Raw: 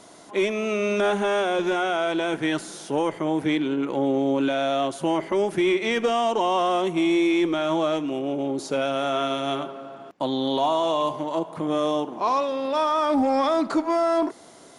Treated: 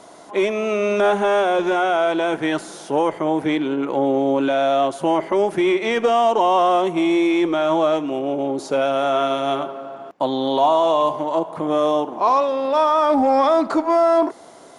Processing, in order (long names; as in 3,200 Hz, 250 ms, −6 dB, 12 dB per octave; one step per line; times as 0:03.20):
parametric band 760 Hz +7 dB 2.1 octaves